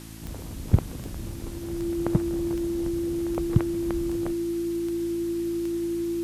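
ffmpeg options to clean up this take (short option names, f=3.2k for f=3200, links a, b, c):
-af "adeclick=t=4,bandreject=f=54.8:t=h:w=4,bandreject=f=109.6:t=h:w=4,bandreject=f=164.4:t=h:w=4,bandreject=f=219.2:t=h:w=4,bandreject=f=274:t=h:w=4,bandreject=f=328.8:t=h:w=4,bandreject=f=340:w=30,afwtdn=0.0045"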